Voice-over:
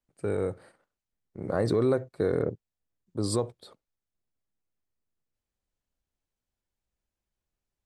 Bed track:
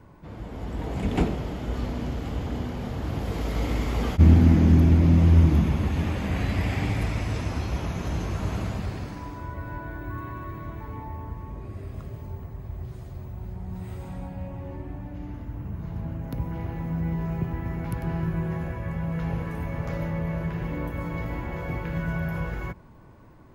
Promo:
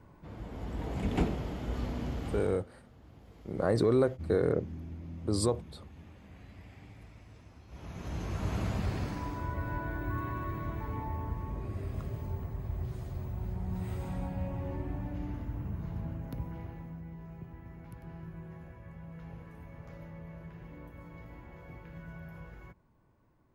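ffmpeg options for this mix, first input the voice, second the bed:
-filter_complex "[0:a]adelay=2100,volume=-1dB[a];[1:a]volume=19.5dB,afade=t=out:st=2.34:d=0.29:silence=0.1,afade=t=in:st=7.67:d=1.38:silence=0.0562341,afade=t=out:st=15.08:d=1.96:silence=0.141254[b];[a][b]amix=inputs=2:normalize=0"

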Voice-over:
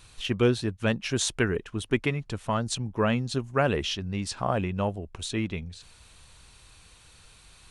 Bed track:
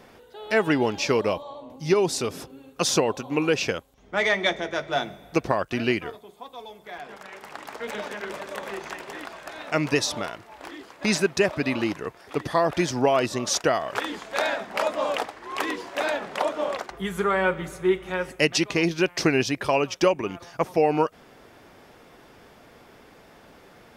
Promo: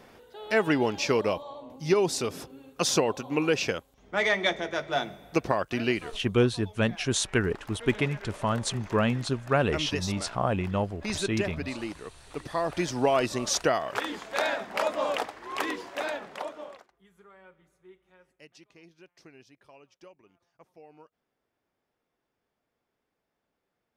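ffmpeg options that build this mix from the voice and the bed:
-filter_complex "[0:a]adelay=5950,volume=0dB[a];[1:a]volume=4.5dB,afade=t=out:st=5.82:d=0.67:silence=0.446684,afade=t=in:st=12.41:d=0.76:silence=0.446684,afade=t=out:st=15.6:d=1.32:silence=0.0354813[b];[a][b]amix=inputs=2:normalize=0"

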